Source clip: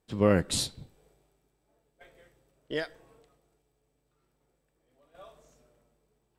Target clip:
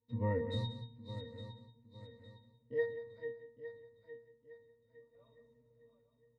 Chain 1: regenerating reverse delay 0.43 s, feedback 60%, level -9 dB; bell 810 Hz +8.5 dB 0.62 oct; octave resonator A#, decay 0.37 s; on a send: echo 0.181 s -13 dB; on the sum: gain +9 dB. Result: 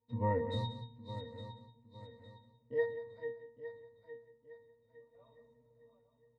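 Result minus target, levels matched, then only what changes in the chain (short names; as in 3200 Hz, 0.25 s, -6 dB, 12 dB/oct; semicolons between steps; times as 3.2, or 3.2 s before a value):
1000 Hz band +6.0 dB
change: bell 810 Hz -2.5 dB 0.62 oct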